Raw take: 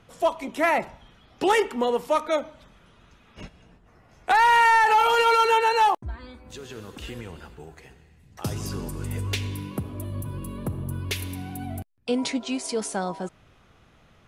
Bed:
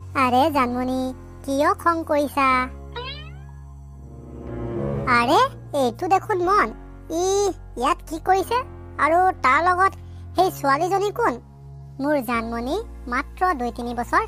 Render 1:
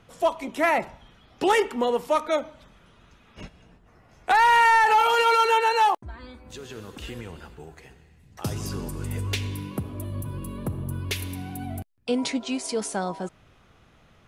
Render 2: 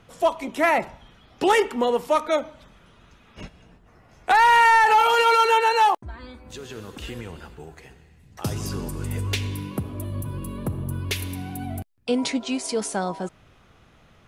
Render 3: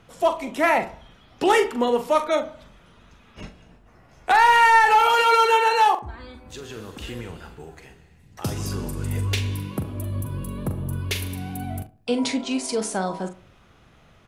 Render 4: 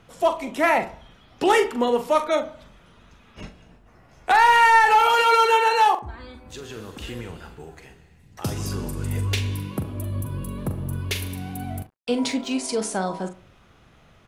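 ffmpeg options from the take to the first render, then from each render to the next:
-filter_complex "[0:a]asettb=1/sr,asplit=3[s0][s1][s2];[s0]atrim=end=5.014[s3];[s1]atrim=start=5.01:end=6.16,asetpts=PTS-STARTPTS,afade=t=in:d=0.004:c=qsin,afade=t=out:st=1.146:d=0.004:c=qsin,lowshelf=f=220:g=-6.5[s4];[s2]atrim=start=6.156[s5];[s3][s4]acrossfade=d=0.004:c1=hsin:c2=qsin[s6];[s6][s5]acrossfade=d=0.004:c1=qsin:c2=hsin"
-af "volume=1.26"
-filter_complex "[0:a]asplit=2[s0][s1];[s1]adelay=42,volume=0.355[s2];[s0][s2]amix=inputs=2:normalize=0,asplit=2[s3][s4];[s4]adelay=70,lowpass=f=1600:p=1,volume=0.158,asplit=2[s5][s6];[s6]adelay=70,lowpass=f=1600:p=1,volume=0.4,asplit=2[s7][s8];[s8]adelay=70,lowpass=f=1600:p=1,volume=0.4,asplit=2[s9][s10];[s10]adelay=70,lowpass=f=1600:p=1,volume=0.4[s11];[s3][s5][s7][s9][s11]amix=inputs=5:normalize=0"
-filter_complex "[0:a]asettb=1/sr,asplit=3[s0][s1][s2];[s0]atrim=end=10.584[s3];[s1]atrim=start=10.58:end=12.54,asetpts=PTS-STARTPTS,afade=t=in:d=0.004:c=qsin,afade=t=out:st=1.956:d=0.004:c=qsin,aeval=exprs='sgn(val(0))*max(abs(val(0))-0.00299,0)':c=same[s4];[s2]atrim=start=12.536[s5];[s3][s4]acrossfade=d=0.004:c1=hsin:c2=qsin[s6];[s6][s5]acrossfade=d=0.004:c1=qsin:c2=hsin"

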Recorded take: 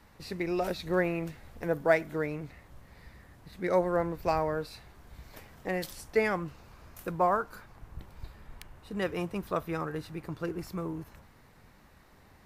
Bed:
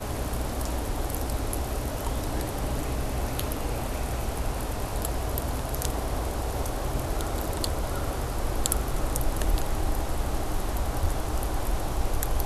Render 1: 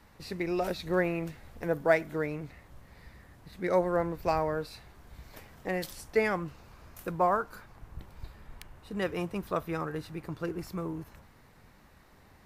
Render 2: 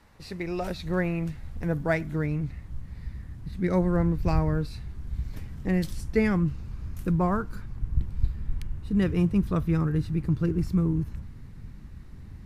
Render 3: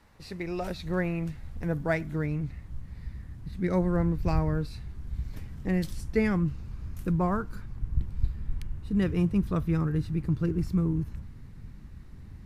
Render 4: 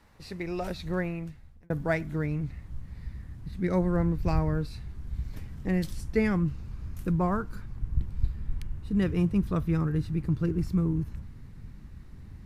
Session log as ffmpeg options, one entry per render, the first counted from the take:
-af anull
-af "asubboost=boost=10:cutoff=200,lowpass=12000"
-af "volume=0.794"
-filter_complex "[0:a]asplit=2[s0][s1];[s0]atrim=end=1.7,asetpts=PTS-STARTPTS,afade=t=out:st=0.86:d=0.84[s2];[s1]atrim=start=1.7,asetpts=PTS-STARTPTS,afade=t=in:d=0.004:c=hsin[s3];[s2][s3]concat=n=2:v=0:a=1"

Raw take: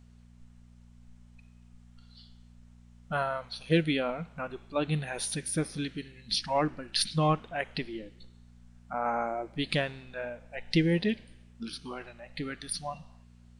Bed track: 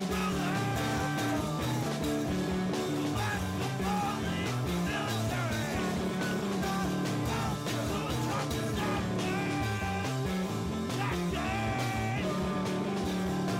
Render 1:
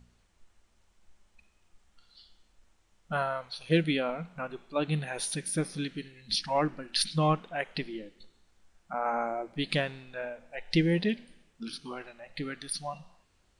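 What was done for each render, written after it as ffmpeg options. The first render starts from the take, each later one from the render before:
-af "bandreject=f=60:t=h:w=4,bandreject=f=120:t=h:w=4,bandreject=f=180:t=h:w=4,bandreject=f=240:t=h:w=4"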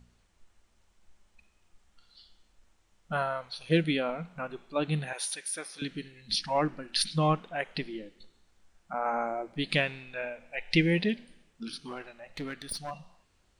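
-filter_complex "[0:a]asettb=1/sr,asplit=3[s0][s1][s2];[s0]atrim=end=5.134[s3];[s1]atrim=start=5.13:end=5.82,asetpts=PTS-STARTPTS,afade=t=in:d=0.004:c=qsin,afade=t=out:st=0.686:d=0.004:c=qsin,highpass=760[s4];[s2]atrim=start=5.816[s5];[s3][s4]acrossfade=d=0.004:c1=hsin:c2=qsin[s6];[s6][s5]acrossfade=d=0.004:c1=qsin:c2=hsin,asettb=1/sr,asplit=3[s7][s8][s9];[s7]atrim=end=9.744[s10];[s8]atrim=start=9.74:end=11.05,asetpts=PTS-STARTPTS,afade=t=in:d=0.004:c=qsin,afade=t=out:st=1.306:d=0.004:c=qsin,equalizer=f=2400:t=o:w=0.57:g=9[s11];[s9]atrim=start=11.046[s12];[s10][s11]acrossfade=d=0.004:c1=hsin:c2=qsin[s13];[s13][s12]acrossfade=d=0.004:c1=qsin:c2=hsin,asettb=1/sr,asplit=3[s14][s15][s16];[s14]atrim=end=11.794[s17];[s15]atrim=start=11.79:end=12.91,asetpts=PTS-STARTPTS,afade=t=in:d=0.004:c=qsin,afade=t=out:st=1.116:d=0.004:c=qsin,aeval=exprs='clip(val(0),-1,0.0158)':c=same[s18];[s16]atrim=start=12.906[s19];[s17][s18]acrossfade=d=0.004:c1=hsin:c2=qsin[s20];[s20][s19]acrossfade=d=0.004:c1=qsin:c2=hsin"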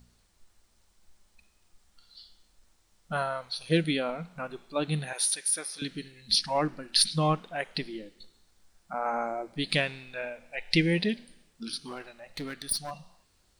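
-af "aexciter=amount=1.8:drive=6.3:freq=3900"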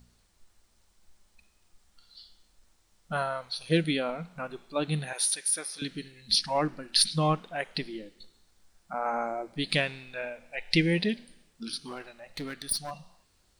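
-af anull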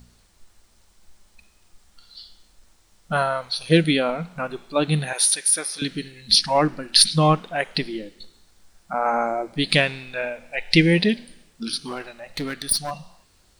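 -af "volume=2.66,alimiter=limit=0.891:level=0:latency=1"

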